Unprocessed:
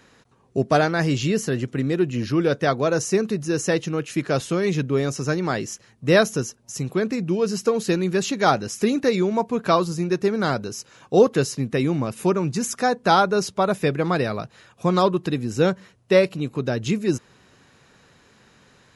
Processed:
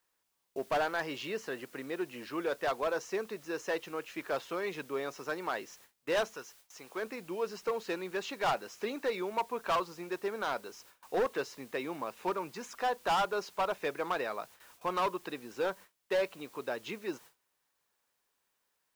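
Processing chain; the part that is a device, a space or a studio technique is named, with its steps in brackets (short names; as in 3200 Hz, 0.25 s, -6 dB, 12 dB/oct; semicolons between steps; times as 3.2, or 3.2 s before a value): drive-through speaker (BPF 510–3500 Hz; bell 960 Hz +5.5 dB 0.44 oct; hard clip -17.5 dBFS, distortion -9 dB; white noise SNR 24 dB); 6.33–7.01 bell 290 Hz -> 92 Hz -8.5 dB 2.9 oct; gate with hold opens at -37 dBFS; gain -8 dB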